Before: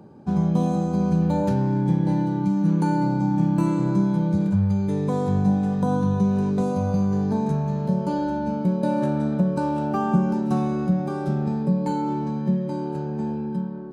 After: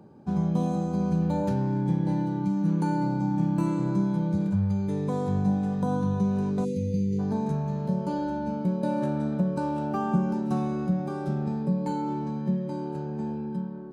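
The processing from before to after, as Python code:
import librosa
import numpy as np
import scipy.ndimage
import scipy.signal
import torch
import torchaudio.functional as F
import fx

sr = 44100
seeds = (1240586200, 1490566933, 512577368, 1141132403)

y = fx.spec_erase(x, sr, start_s=6.65, length_s=0.54, low_hz=520.0, high_hz=1900.0)
y = F.gain(torch.from_numpy(y), -4.5).numpy()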